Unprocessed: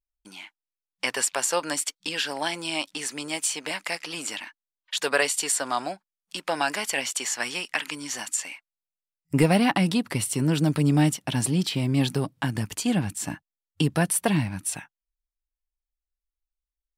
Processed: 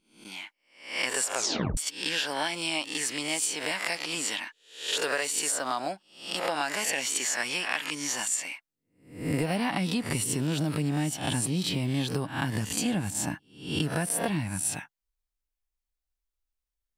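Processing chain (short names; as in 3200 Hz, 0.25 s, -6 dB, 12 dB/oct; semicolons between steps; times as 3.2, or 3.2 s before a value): spectral swells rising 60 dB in 0.48 s; 1.35 tape stop 0.42 s; compressor 6:1, threshold -25 dBFS, peak gain reduction 11 dB; 5.09–5.79 backlash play -49 dBFS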